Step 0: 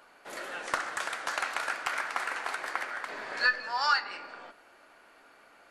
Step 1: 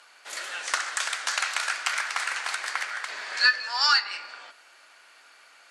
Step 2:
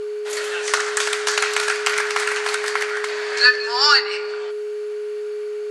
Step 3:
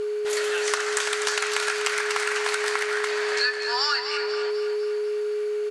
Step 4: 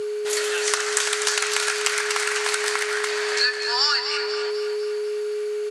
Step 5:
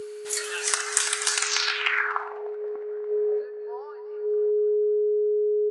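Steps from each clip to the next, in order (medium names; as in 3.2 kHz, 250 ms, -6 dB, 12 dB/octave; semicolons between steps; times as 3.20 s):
frequency weighting ITU-R 468
whistle 420 Hz -31 dBFS; trim +6.5 dB
compression, threshold -22 dBFS, peak gain reduction 13 dB; on a send: feedback delay 248 ms, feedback 53%, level -9 dB
high-pass 120 Hz; treble shelf 3.9 kHz +8 dB
low-pass sweep 10 kHz -> 480 Hz, 1.36–2.48 s; spectral noise reduction 7 dB; trim -3.5 dB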